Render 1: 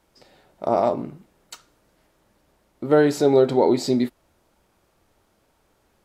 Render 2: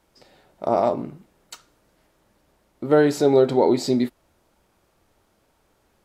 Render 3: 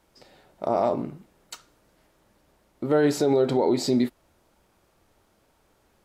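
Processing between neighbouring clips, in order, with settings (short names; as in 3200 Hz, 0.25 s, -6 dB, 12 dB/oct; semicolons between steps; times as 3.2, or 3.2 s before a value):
nothing audible
limiter -12.5 dBFS, peak gain reduction 7 dB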